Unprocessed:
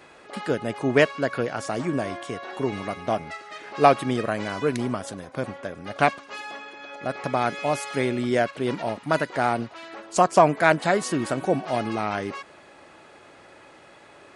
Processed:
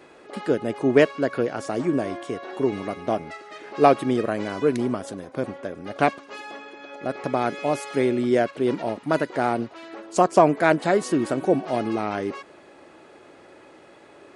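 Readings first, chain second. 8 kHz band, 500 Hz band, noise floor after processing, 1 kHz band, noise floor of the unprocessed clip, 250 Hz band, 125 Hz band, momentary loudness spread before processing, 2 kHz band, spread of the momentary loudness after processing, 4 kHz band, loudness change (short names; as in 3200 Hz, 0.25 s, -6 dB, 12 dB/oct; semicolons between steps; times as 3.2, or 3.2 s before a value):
-3.0 dB, +2.0 dB, -50 dBFS, -1.0 dB, -50 dBFS, +3.5 dB, -1.0 dB, 16 LU, -2.5 dB, 16 LU, -3.0 dB, +1.0 dB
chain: bell 350 Hz +8 dB 1.5 oct; gain -3 dB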